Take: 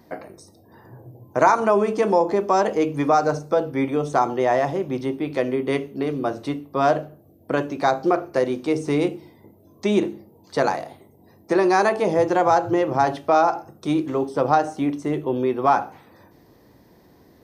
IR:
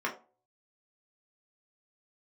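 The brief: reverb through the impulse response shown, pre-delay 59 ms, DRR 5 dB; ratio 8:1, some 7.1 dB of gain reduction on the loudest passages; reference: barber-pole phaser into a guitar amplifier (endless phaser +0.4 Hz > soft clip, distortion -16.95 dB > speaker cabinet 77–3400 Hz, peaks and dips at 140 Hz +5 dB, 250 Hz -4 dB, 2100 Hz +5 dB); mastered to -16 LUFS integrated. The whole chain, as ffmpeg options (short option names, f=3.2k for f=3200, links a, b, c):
-filter_complex "[0:a]acompressor=threshold=-19dB:ratio=8,asplit=2[a][b];[1:a]atrim=start_sample=2205,adelay=59[c];[b][c]afir=irnorm=-1:irlink=0,volume=-13dB[d];[a][d]amix=inputs=2:normalize=0,asplit=2[e][f];[f]afreqshift=0.4[g];[e][g]amix=inputs=2:normalize=1,asoftclip=threshold=-19.5dB,highpass=77,equalizer=f=140:t=q:w=4:g=5,equalizer=f=250:t=q:w=4:g=-4,equalizer=f=2.1k:t=q:w=4:g=5,lowpass=f=3.4k:w=0.5412,lowpass=f=3.4k:w=1.3066,volume=13.5dB"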